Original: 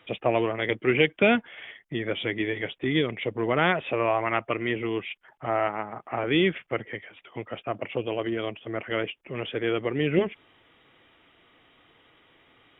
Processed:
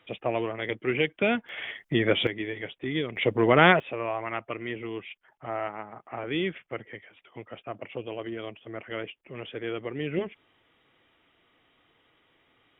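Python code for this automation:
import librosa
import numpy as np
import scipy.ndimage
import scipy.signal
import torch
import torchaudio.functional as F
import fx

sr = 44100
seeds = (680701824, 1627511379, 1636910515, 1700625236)

y = fx.gain(x, sr, db=fx.steps((0.0, -4.5), (1.49, 6.0), (2.27, -5.0), (3.16, 5.0), (3.8, -6.5)))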